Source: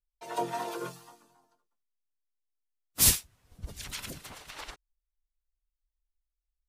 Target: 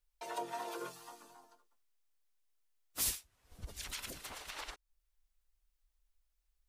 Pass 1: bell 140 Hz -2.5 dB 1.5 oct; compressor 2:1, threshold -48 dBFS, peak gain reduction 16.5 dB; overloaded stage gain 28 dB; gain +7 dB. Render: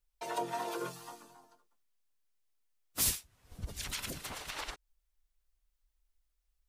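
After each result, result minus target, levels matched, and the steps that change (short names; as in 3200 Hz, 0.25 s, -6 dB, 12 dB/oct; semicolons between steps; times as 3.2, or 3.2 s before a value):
compressor: peak gain reduction -4 dB; 125 Hz band +4.0 dB
change: compressor 2:1, threshold -56.5 dBFS, peak gain reduction 21 dB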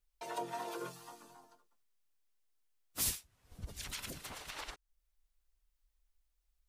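125 Hz band +4.0 dB
change: bell 140 Hz -10.5 dB 1.5 oct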